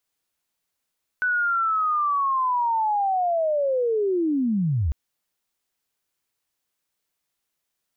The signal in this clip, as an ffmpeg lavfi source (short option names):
-f lavfi -i "aevalsrc='0.106*sin(2*PI*(1500*t-1437*t*t/(2*3.7)))':d=3.7:s=44100"